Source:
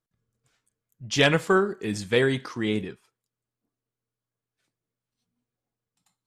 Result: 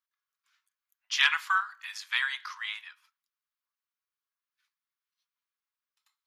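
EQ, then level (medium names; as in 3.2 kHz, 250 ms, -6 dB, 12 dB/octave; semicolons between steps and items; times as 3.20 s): steep high-pass 1 kHz 48 dB/octave; peaking EQ 8.3 kHz -14 dB 0.49 oct; 0.0 dB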